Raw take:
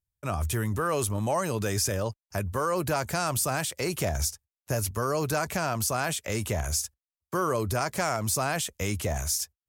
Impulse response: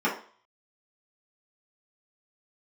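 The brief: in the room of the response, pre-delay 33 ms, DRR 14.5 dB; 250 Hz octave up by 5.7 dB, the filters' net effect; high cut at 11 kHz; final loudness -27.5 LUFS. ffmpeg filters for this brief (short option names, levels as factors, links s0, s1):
-filter_complex "[0:a]lowpass=11000,equalizer=f=250:t=o:g=8,asplit=2[s0][s1];[1:a]atrim=start_sample=2205,adelay=33[s2];[s1][s2]afir=irnorm=-1:irlink=0,volume=0.0398[s3];[s0][s3]amix=inputs=2:normalize=0,volume=0.944"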